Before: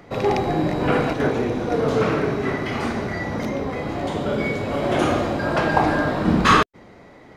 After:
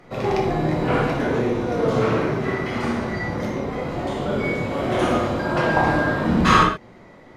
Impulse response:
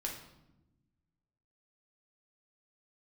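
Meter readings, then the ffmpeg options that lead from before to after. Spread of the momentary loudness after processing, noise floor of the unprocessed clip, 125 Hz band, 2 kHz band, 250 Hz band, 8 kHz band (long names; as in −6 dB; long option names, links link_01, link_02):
9 LU, −46 dBFS, +1.0 dB, +0.5 dB, 0.0 dB, −1.0 dB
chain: -filter_complex "[1:a]atrim=start_sample=2205,atrim=end_sample=3969,asetrate=26901,aresample=44100[link_01];[0:a][link_01]afir=irnorm=-1:irlink=0,volume=-4dB"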